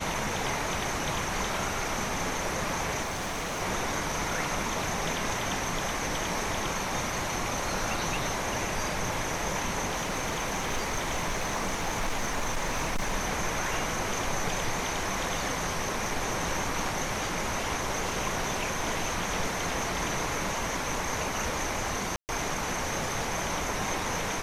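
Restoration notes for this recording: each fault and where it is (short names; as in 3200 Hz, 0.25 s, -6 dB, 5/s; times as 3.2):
3.02–3.62 clipped -29.5 dBFS
9.98–13.15 clipped -24.5 dBFS
22.16–22.29 gap 0.129 s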